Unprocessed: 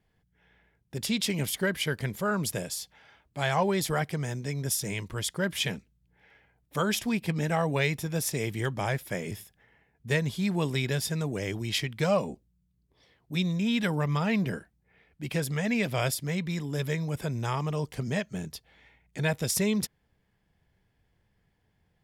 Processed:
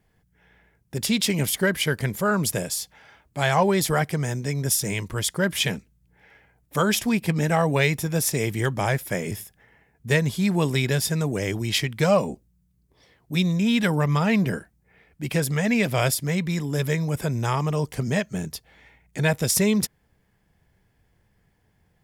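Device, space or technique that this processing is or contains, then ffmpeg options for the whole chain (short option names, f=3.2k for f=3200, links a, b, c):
exciter from parts: -filter_complex "[0:a]asplit=2[a][b];[b]highpass=2.3k,asoftclip=type=tanh:threshold=-37.5dB,highpass=3.8k,volume=-5dB[c];[a][c]amix=inputs=2:normalize=0,volume=6dB"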